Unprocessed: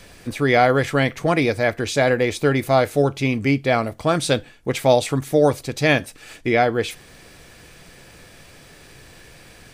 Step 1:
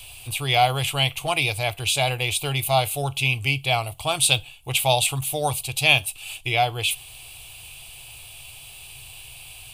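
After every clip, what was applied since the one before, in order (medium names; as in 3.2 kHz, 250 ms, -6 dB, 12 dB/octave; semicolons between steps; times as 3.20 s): FFT filter 130 Hz 0 dB, 200 Hz -26 dB, 340 Hz -14 dB, 530 Hz -14 dB, 770 Hz +1 dB, 1.1 kHz -4 dB, 1.8 kHz -17 dB, 2.7 kHz +13 dB, 5.7 kHz -3 dB, 9.5 kHz +13 dB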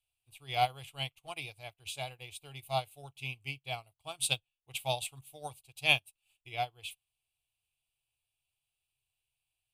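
upward expansion 2.5:1, over -39 dBFS; trim -7.5 dB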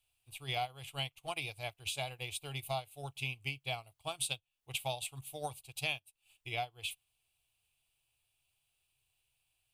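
compression 6:1, threshold -41 dBFS, peak gain reduction 19.5 dB; trim +6.5 dB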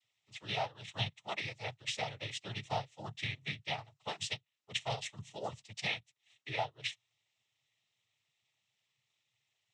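noise-vocoded speech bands 12; trim +1 dB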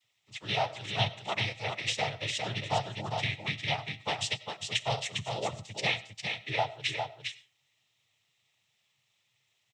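delay 404 ms -5 dB; on a send at -18 dB: reverberation RT60 0.35 s, pre-delay 55 ms; on the sum: trim +6 dB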